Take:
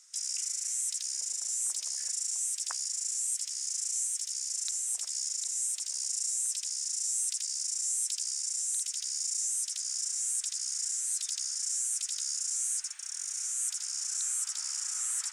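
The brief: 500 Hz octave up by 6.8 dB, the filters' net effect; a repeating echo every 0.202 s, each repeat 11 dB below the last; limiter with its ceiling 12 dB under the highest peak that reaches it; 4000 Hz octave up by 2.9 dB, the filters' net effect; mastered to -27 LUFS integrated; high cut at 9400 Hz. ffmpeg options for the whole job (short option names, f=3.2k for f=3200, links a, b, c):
-af "lowpass=9.4k,equalizer=f=500:t=o:g=9,equalizer=f=4k:t=o:g=5,alimiter=level_in=1.5dB:limit=-24dB:level=0:latency=1,volume=-1.5dB,aecho=1:1:202|404|606:0.282|0.0789|0.0221,volume=7dB"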